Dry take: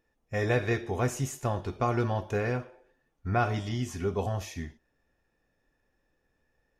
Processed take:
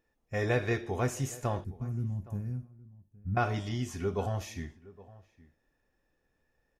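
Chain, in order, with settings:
0:01.64–0:03.37: drawn EQ curve 210 Hz 0 dB, 470 Hz −25 dB, 3,700 Hz −30 dB, 11,000 Hz −1 dB
slap from a distant wall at 140 metres, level −20 dB
level −2 dB

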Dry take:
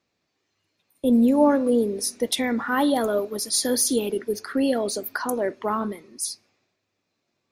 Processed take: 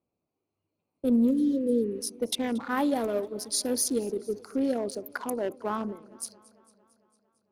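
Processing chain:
adaptive Wiener filter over 25 samples
healed spectral selection 0:01.33–0:02.04, 540–3,000 Hz after
feedback echo with a swinging delay time 226 ms, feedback 64%, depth 91 cents, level −22.5 dB
level −4.5 dB

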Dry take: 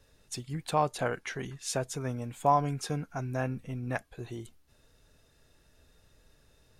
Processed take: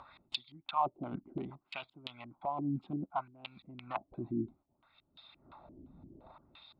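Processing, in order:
adaptive Wiener filter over 15 samples
noise gate −57 dBFS, range −13 dB
reversed playback
downward compressor 5 to 1, threshold −42 dBFS, peak gain reduction 20.5 dB
reversed playback
auto-filter low-pass square 2.9 Hz 350–3,700 Hz
phaser with its sweep stopped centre 1,700 Hz, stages 6
auto-filter band-pass sine 0.63 Hz 250–3,800 Hz
upward compression, threshold −56 dBFS
harmonic and percussive parts rebalanced percussive +6 dB
level +14.5 dB

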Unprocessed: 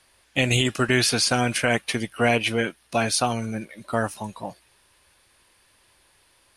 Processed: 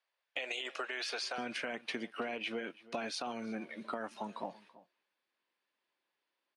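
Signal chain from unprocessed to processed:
high-pass filter 470 Hz 24 dB per octave, from 0:01.38 210 Hz
noise gate with hold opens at −49 dBFS
low-pass filter 3,900 Hz 12 dB per octave
brickwall limiter −16.5 dBFS, peak gain reduction 8 dB
downward compressor, threshold −34 dBFS, peak gain reduction 12 dB
slap from a distant wall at 57 metres, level −19 dB
level −2 dB

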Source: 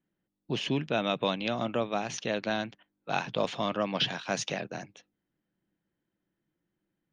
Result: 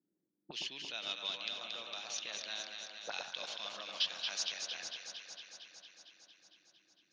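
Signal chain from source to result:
envelope filter 320–4,800 Hz, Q 2, up, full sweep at −31 dBFS
delay that swaps between a low-pass and a high-pass 114 ms, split 1,600 Hz, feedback 85%, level −4 dB
level +1 dB

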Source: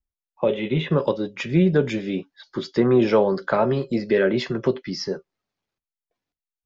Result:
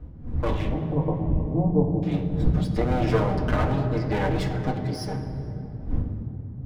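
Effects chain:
lower of the sound and its delayed copy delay 6.5 ms
wind on the microphone 110 Hz −26 dBFS
0:00.69–0:02.03: Butterworth low-pass 1,000 Hz 72 dB per octave
on a send: convolution reverb RT60 3.4 s, pre-delay 3 ms, DRR 3 dB
on the sum: level −6 dB

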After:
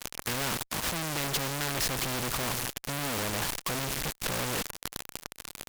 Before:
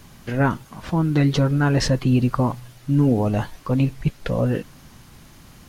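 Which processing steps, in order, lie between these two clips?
fuzz pedal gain 45 dB, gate −38 dBFS
every bin compressed towards the loudest bin 2 to 1
level −4.5 dB

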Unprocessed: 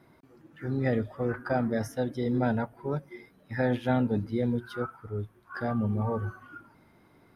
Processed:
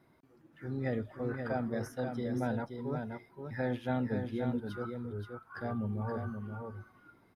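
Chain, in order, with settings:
single-tap delay 527 ms −6 dB
level −7 dB

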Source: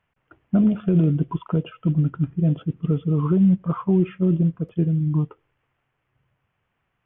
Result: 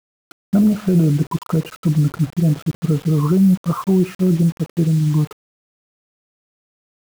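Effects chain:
low-pass filter 3,000 Hz 24 dB per octave
in parallel at −1 dB: brickwall limiter −16.5 dBFS, peak gain reduction 7 dB
on the sum: bit-depth reduction 6 bits, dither none

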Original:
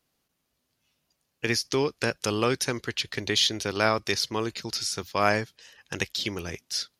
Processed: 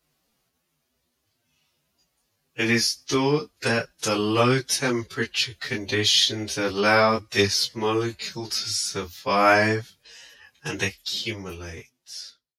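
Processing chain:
fade-out on the ending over 1.01 s
phase-vocoder stretch with locked phases 1.8×
micro pitch shift up and down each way 14 cents
level +8 dB

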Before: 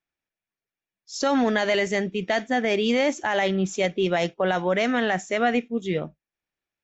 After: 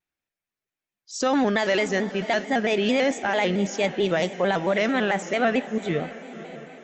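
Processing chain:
feedback delay with all-pass diffusion 554 ms, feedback 52%, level −14 dB
pitch modulation by a square or saw wave square 4.5 Hz, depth 100 cents

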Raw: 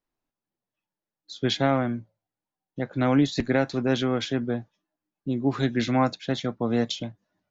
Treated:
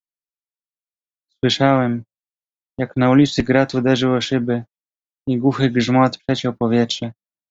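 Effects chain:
noise gate −34 dBFS, range −38 dB
level +8 dB

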